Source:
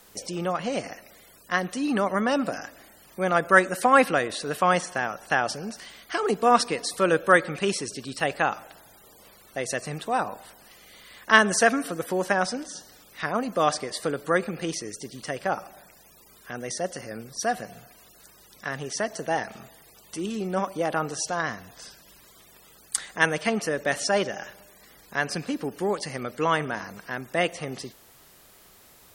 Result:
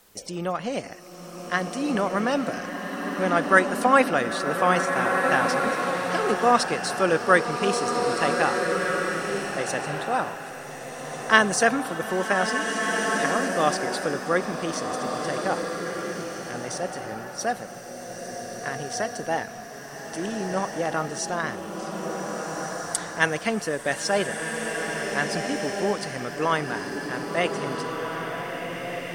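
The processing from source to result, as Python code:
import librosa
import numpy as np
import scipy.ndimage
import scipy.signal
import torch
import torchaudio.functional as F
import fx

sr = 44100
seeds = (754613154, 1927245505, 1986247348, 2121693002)

p1 = fx.backlash(x, sr, play_db=-31.0)
p2 = x + (p1 * librosa.db_to_amplitude(-7.0))
p3 = fx.rev_bloom(p2, sr, seeds[0], attack_ms=1690, drr_db=2.0)
y = p3 * librosa.db_to_amplitude(-3.5)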